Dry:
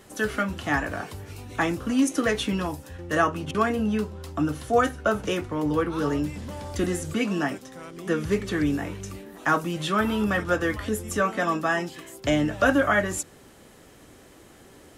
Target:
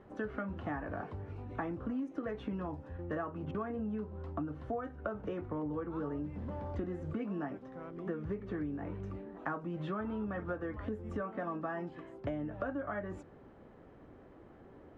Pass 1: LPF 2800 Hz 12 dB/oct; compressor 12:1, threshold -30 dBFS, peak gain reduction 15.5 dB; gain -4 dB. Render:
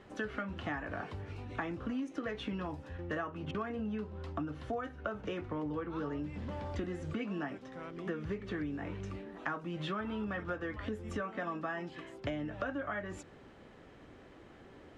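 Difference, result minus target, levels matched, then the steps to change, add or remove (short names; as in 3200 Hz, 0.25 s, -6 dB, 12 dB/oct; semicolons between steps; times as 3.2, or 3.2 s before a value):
2000 Hz band +4.5 dB
change: LPF 1200 Hz 12 dB/oct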